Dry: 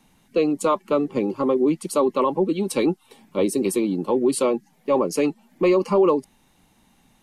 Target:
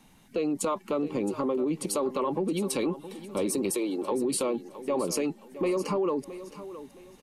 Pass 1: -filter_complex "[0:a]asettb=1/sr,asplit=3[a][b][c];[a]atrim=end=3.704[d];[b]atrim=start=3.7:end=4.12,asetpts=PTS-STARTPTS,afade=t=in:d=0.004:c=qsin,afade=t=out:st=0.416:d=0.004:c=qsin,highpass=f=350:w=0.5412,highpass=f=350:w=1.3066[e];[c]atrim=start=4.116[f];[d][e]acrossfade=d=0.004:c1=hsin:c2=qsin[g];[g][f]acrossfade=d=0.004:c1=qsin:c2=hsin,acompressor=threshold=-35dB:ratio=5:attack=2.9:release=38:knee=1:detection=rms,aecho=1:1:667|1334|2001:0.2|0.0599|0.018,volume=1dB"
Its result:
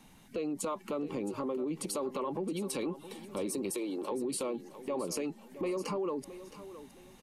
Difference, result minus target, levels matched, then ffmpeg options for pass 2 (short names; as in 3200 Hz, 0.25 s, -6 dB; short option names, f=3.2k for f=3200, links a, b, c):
compressor: peak gain reduction +7 dB
-filter_complex "[0:a]asettb=1/sr,asplit=3[a][b][c];[a]atrim=end=3.704[d];[b]atrim=start=3.7:end=4.12,asetpts=PTS-STARTPTS,afade=t=in:d=0.004:c=qsin,afade=t=out:st=0.416:d=0.004:c=qsin,highpass=f=350:w=0.5412,highpass=f=350:w=1.3066[e];[c]atrim=start=4.116[f];[d][e]acrossfade=d=0.004:c1=hsin:c2=qsin[g];[g][f]acrossfade=d=0.004:c1=qsin:c2=hsin,acompressor=threshold=-26.5dB:ratio=5:attack=2.9:release=38:knee=1:detection=rms,aecho=1:1:667|1334|2001:0.2|0.0599|0.018,volume=1dB"